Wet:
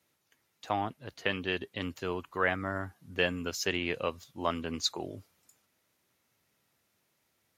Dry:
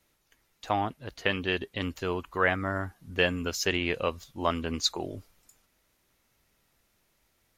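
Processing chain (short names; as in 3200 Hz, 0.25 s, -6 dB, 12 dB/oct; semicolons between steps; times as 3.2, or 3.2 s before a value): HPF 88 Hz 24 dB/oct; gain -3.5 dB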